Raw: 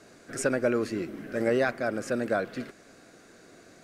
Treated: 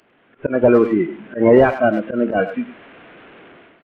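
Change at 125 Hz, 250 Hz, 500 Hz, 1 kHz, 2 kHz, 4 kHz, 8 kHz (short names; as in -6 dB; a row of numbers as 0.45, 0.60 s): +11.5 dB, +13.0 dB, +12.5 dB, +12.5 dB, +7.0 dB, n/a, under -20 dB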